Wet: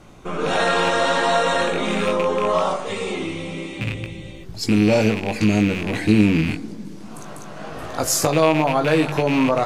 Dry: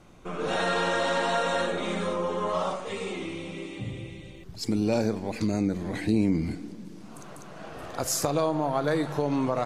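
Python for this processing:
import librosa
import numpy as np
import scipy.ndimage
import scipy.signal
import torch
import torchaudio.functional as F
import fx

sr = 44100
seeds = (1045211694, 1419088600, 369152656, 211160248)

y = fx.rattle_buzz(x, sr, strikes_db=-33.0, level_db=-23.0)
y = fx.doubler(y, sr, ms=19.0, db=-7.0)
y = y * 10.0 ** (7.0 / 20.0)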